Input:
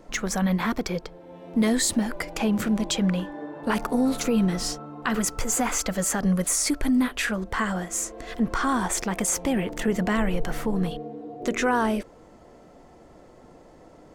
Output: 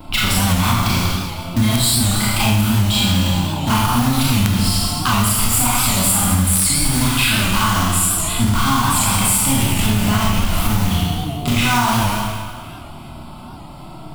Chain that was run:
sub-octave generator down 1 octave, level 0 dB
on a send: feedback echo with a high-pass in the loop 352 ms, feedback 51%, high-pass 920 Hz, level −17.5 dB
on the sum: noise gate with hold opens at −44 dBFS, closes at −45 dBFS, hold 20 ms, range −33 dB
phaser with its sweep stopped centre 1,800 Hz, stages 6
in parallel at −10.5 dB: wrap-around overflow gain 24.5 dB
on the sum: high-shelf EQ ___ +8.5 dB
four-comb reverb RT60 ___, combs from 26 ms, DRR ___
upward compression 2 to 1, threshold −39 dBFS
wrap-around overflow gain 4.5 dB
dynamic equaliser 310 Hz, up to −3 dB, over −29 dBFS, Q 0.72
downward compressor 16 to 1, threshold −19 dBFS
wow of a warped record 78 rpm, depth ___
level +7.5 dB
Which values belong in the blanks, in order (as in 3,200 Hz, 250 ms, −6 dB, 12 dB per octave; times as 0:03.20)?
2,900 Hz, 1.3 s, −6.5 dB, 100 cents